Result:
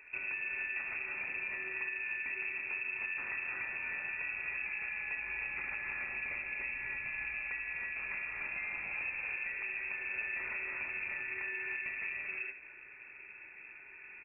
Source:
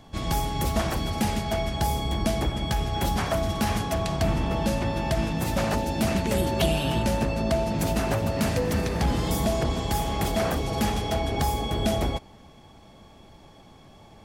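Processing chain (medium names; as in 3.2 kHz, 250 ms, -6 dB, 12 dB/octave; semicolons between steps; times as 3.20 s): gated-style reverb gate 360 ms rising, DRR -1 dB; compression 8:1, threshold -31 dBFS, peak gain reduction 15 dB; frequency inversion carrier 2.6 kHz; on a send: early reflections 56 ms -15 dB, 73 ms -12.5 dB; on the sum: short-mantissa float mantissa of 8-bit; trim -6 dB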